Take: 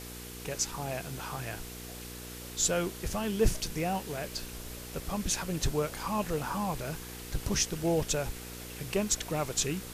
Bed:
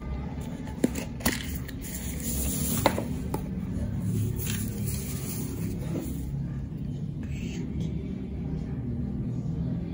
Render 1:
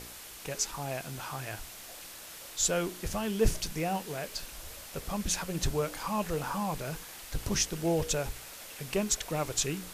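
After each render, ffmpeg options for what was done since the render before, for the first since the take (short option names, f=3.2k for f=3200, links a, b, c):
-af "bandreject=f=60:t=h:w=4,bandreject=f=120:t=h:w=4,bandreject=f=180:t=h:w=4,bandreject=f=240:t=h:w=4,bandreject=f=300:t=h:w=4,bandreject=f=360:t=h:w=4,bandreject=f=420:t=h:w=4,bandreject=f=480:t=h:w=4"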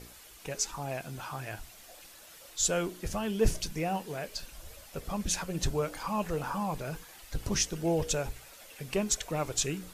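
-af "afftdn=nr=8:nf=-47"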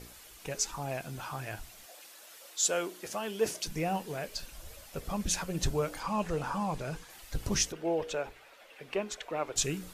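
-filter_complex "[0:a]asettb=1/sr,asplit=3[a][b][c];[a]atrim=end=1.864[d];[b]atrim=start=1.86:end=3.67,asetpts=PTS-STARTPTS,afade=t=in:d=0.004:c=qsin,afade=t=out:st=1.806:d=0.004:c=qsin,highpass=340[e];[c]atrim=start=3.666[f];[d][e]acrossfade=d=0.004:c1=hsin:c2=qsin[g];[g][f]acrossfade=d=0.004:c1=qsin:c2=hsin,asettb=1/sr,asplit=3[h][i][j];[h]atrim=end=6.004[k];[i]atrim=start=6:end=7.1,asetpts=PTS-STARTPTS,afade=t=in:d=0.004:c=qsin,afade=t=out:st=1.096:d=0.004:c=qsin,lowpass=9.4k[l];[j]atrim=start=7.096[m];[k][l]acrossfade=d=0.004:c1=hsin:c2=qsin[n];[n][m]acrossfade=d=0.004:c1=qsin:c2=hsin,asettb=1/sr,asplit=3[o][p][q];[o]atrim=end=7.724[r];[p]atrim=start=7.72:end=9.56,asetpts=PTS-STARTPTS,afade=t=in:d=0.004:c=qsin,afade=t=out:st=1.836:d=0.004:c=qsin,acrossover=split=280 3600:gain=0.141 1 0.158[s][t][u];[s][t][u]amix=inputs=3:normalize=0[v];[q]atrim=start=9.556[w];[r][v]acrossfade=d=0.004:c1=hsin:c2=qsin[x];[x][w]acrossfade=d=0.004:c1=qsin:c2=hsin"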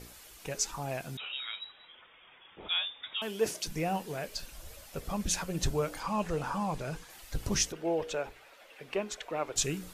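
-filter_complex "[0:a]asettb=1/sr,asplit=3[a][b][c];[a]atrim=end=1.174[d];[b]atrim=start=1.17:end=3.22,asetpts=PTS-STARTPTS,afade=t=in:d=0.004:c=qsin,afade=t=out:st=2.046:d=0.004:c=qsin,lowpass=f=3.3k:t=q:w=0.5098,lowpass=f=3.3k:t=q:w=0.6013,lowpass=f=3.3k:t=q:w=0.9,lowpass=f=3.3k:t=q:w=2.563,afreqshift=-3900[e];[c]atrim=start=3.216[f];[d][e]acrossfade=d=0.004:c1=hsin:c2=qsin[g];[g][f]acrossfade=d=0.004:c1=qsin:c2=hsin"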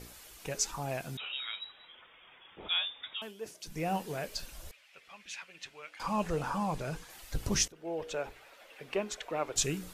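-filter_complex "[0:a]asettb=1/sr,asplit=3[a][b][c];[a]atrim=end=4.714[d];[b]atrim=start=4.71:end=6,asetpts=PTS-STARTPTS,afade=t=in:d=0.004:c=qsin,afade=t=out:st=1.286:d=0.004:c=qsin,bandpass=f=2.4k:t=q:w=2.5[e];[c]atrim=start=5.996[f];[d][e]acrossfade=d=0.004:c1=hsin:c2=qsin[g];[g][f]acrossfade=d=0.004:c1=qsin:c2=hsin,asplit=4[h][i][j][k];[h]atrim=end=3.35,asetpts=PTS-STARTPTS,afade=t=out:st=3.01:d=0.34:silence=0.223872[l];[i]atrim=start=3.35:end=3.59,asetpts=PTS-STARTPTS,volume=-13dB[m];[j]atrim=start=3.59:end=7.68,asetpts=PTS-STARTPTS,afade=t=in:d=0.34:silence=0.223872,afade=t=out:st=4.086:d=0.004:c=hsin:silence=0.133352[n];[k]atrim=start=7.68,asetpts=PTS-STARTPTS,afade=t=in:d=0.62:silence=0.133352[o];[l][m][n][o]concat=n=4:v=0:a=1"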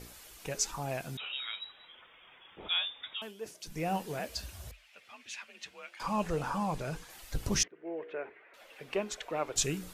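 -filter_complex "[0:a]asettb=1/sr,asplit=3[a][b][c];[a]atrim=end=4.194[d];[b]atrim=start=4.19:end=6.02,asetpts=PTS-STARTPTS,afade=t=in:d=0.004:c=qsin,afade=t=out:st=1.826:d=0.004:c=qsin,afreqshift=43[e];[c]atrim=start=6.016[f];[d][e]acrossfade=d=0.004:c1=hsin:c2=qsin[g];[g][f]acrossfade=d=0.004:c1=qsin:c2=hsin,asettb=1/sr,asplit=3[h][i][j];[h]atrim=end=7.634[k];[i]atrim=start=7.63:end=8.54,asetpts=PTS-STARTPTS,afade=t=in:d=0.004:c=qsin,afade=t=out:st=0.906:d=0.004:c=qsin,highpass=310,equalizer=f=380:t=q:w=4:g=6,equalizer=f=540:t=q:w=4:g=-5,equalizer=f=820:t=q:w=4:g=-8,equalizer=f=1.3k:t=q:w=4:g=-4,equalizer=f=2k:t=q:w=4:g=5,lowpass=f=2.2k:w=0.5412,lowpass=f=2.2k:w=1.3066[l];[j]atrim=start=8.536[m];[k][l]acrossfade=d=0.004:c1=hsin:c2=qsin[n];[n][m]acrossfade=d=0.004:c1=qsin:c2=hsin"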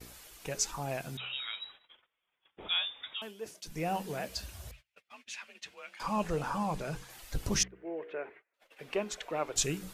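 -af "bandreject=f=63.35:t=h:w=4,bandreject=f=126.7:t=h:w=4,bandreject=f=190.05:t=h:w=4,agate=range=-27dB:threshold=-53dB:ratio=16:detection=peak"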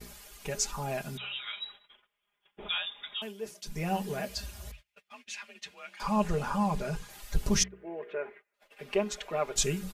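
-af "lowshelf=f=150:g=4.5,aecho=1:1:4.9:0.72"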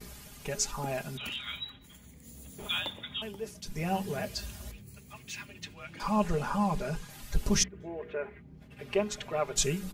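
-filter_complex "[1:a]volume=-20dB[a];[0:a][a]amix=inputs=2:normalize=0"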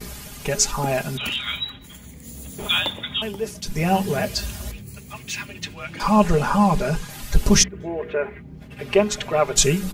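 -af "volume=11.5dB,alimiter=limit=-3dB:level=0:latency=1"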